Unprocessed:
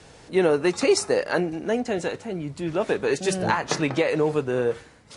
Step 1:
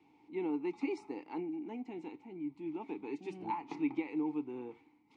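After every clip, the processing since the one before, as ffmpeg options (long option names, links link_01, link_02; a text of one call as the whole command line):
ffmpeg -i in.wav -filter_complex "[0:a]asplit=3[link_01][link_02][link_03];[link_01]bandpass=frequency=300:width_type=q:width=8,volume=0dB[link_04];[link_02]bandpass=frequency=870:width_type=q:width=8,volume=-6dB[link_05];[link_03]bandpass=frequency=2240:width_type=q:width=8,volume=-9dB[link_06];[link_04][link_05][link_06]amix=inputs=3:normalize=0,highshelf=frequency=7900:gain=-5.5,volume=-4dB" out.wav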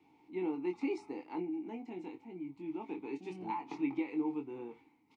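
ffmpeg -i in.wav -filter_complex "[0:a]asplit=2[link_01][link_02];[link_02]adelay=22,volume=-5.5dB[link_03];[link_01][link_03]amix=inputs=2:normalize=0,volume=-1dB" out.wav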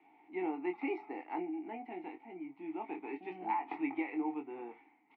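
ffmpeg -i in.wav -af "highpass=360,equalizer=frequency=480:width_type=q:width=4:gain=-6,equalizer=frequency=730:width_type=q:width=4:gain=9,equalizer=frequency=1000:width_type=q:width=4:gain=-3,equalizer=frequency=1900:width_type=q:width=4:gain=7,lowpass=frequency=2700:width=0.5412,lowpass=frequency=2700:width=1.3066,volume=3dB" out.wav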